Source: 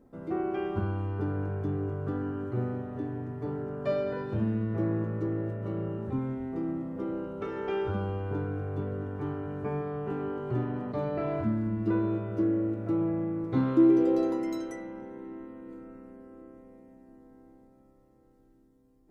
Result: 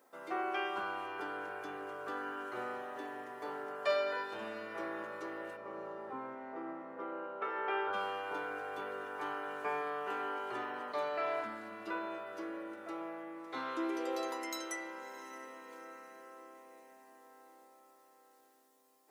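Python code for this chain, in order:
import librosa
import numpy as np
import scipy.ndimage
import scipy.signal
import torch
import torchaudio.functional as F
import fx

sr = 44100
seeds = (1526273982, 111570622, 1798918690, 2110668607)

y = fx.lowpass(x, sr, hz=fx.line((5.56, 1100.0), (7.92, 1900.0)), slope=12, at=(5.56, 7.92), fade=0.02)
y = fx.rider(y, sr, range_db=5, speed_s=2.0)
y = scipy.signal.sosfilt(scipy.signal.butter(2, 790.0, 'highpass', fs=sr, output='sos'), y)
y = fx.tilt_eq(y, sr, slope=2.0)
y = fx.echo_diffused(y, sr, ms=641, feedback_pct=40, wet_db=-15.0)
y = F.gain(torch.from_numpy(y), 3.0).numpy()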